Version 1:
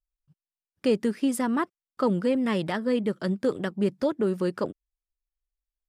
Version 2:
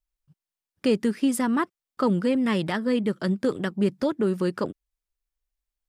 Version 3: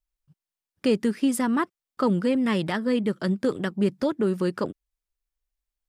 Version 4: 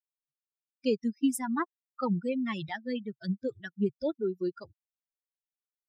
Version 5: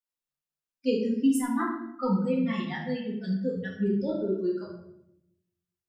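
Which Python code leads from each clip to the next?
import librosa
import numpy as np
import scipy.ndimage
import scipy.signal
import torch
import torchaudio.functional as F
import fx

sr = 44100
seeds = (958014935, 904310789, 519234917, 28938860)

y1 = fx.dynamic_eq(x, sr, hz=590.0, q=1.2, threshold_db=-34.0, ratio=4.0, max_db=-4)
y1 = F.gain(torch.from_numpy(y1), 3.0).numpy()
y2 = y1
y3 = fx.bin_expand(y2, sr, power=3.0)
y3 = F.gain(torch.from_numpy(y3), -1.5).numpy()
y4 = fx.room_shoebox(y3, sr, seeds[0], volume_m3=210.0, walls='mixed', distance_m=1.9)
y4 = F.gain(torch.from_numpy(y4), -4.5).numpy()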